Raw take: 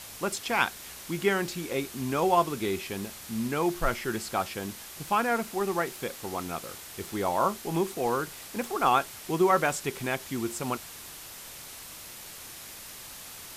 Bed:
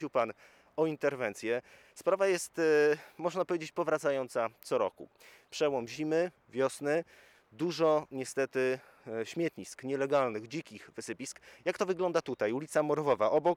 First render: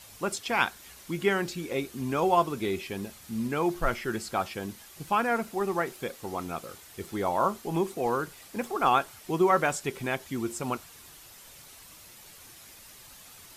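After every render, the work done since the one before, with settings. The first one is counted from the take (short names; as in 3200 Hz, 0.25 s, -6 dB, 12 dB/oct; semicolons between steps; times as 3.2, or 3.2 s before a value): denoiser 8 dB, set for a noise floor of -44 dBFS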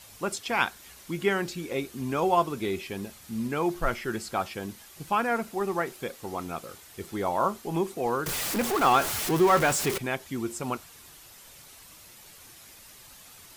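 8.26–9.98 zero-crossing step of -25.5 dBFS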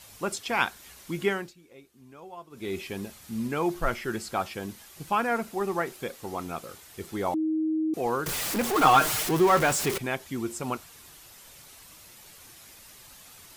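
1.25–2.79 dip -20.5 dB, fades 0.29 s; 7.34–7.94 bleep 315 Hz -23.5 dBFS; 8.75–9.23 comb 6.5 ms, depth 92%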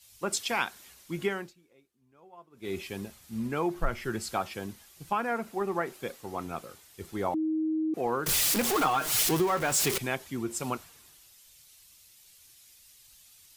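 compressor 6:1, threshold -26 dBFS, peak gain reduction 11.5 dB; three-band expander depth 70%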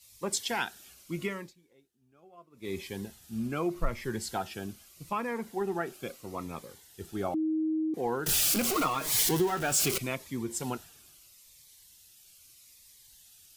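cascading phaser falling 0.79 Hz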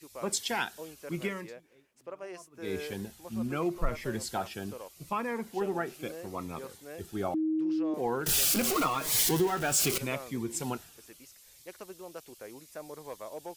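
add bed -14.5 dB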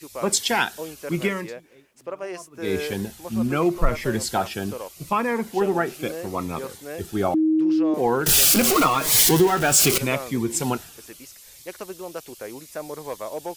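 gain +10 dB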